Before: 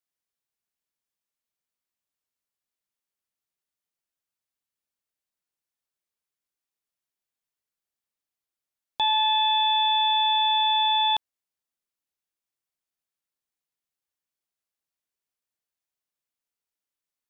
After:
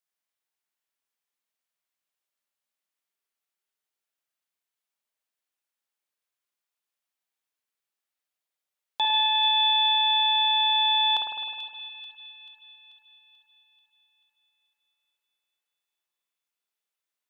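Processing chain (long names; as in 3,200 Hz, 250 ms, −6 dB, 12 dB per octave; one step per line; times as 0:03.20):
high-pass filter 570 Hz 6 dB per octave
delay with a high-pass on its return 437 ms, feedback 53%, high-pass 2,200 Hz, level −10 dB
spring reverb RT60 1.7 s, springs 51 ms, chirp 25 ms, DRR −1 dB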